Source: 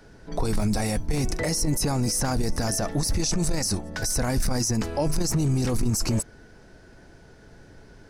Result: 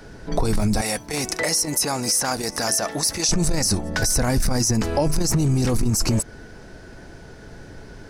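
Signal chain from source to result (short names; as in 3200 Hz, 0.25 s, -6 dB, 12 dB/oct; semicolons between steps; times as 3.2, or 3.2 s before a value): 0.81–3.29 HPF 780 Hz 6 dB/oct; compressor, threshold -25 dBFS, peak gain reduction 6 dB; gain +8.5 dB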